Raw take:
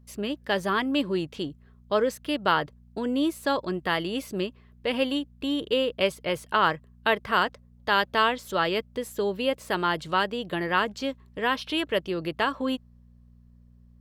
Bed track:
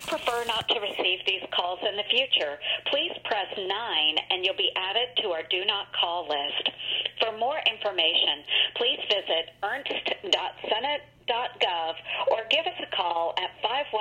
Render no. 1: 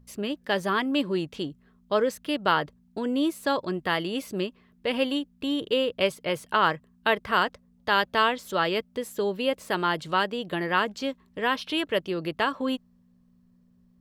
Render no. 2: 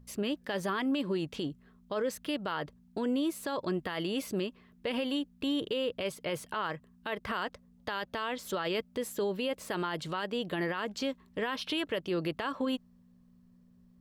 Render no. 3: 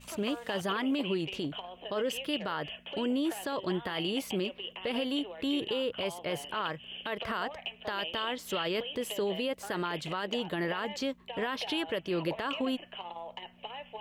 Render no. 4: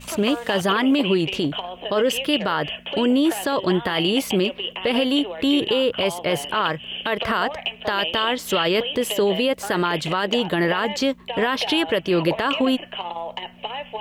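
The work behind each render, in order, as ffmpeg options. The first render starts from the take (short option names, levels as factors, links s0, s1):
-af "bandreject=f=60:t=h:w=4,bandreject=f=120:t=h:w=4"
-af "acompressor=threshold=0.0562:ratio=3,alimiter=limit=0.0631:level=0:latency=1:release=30"
-filter_complex "[1:a]volume=0.168[s0];[0:a][s0]amix=inputs=2:normalize=0"
-af "volume=3.98"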